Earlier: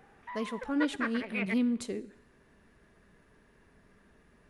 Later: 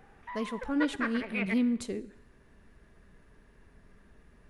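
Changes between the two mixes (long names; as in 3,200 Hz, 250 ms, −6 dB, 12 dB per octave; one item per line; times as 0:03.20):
speech: add low-shelf EQ 75 Hz +12 dB
background: send +8.0 dB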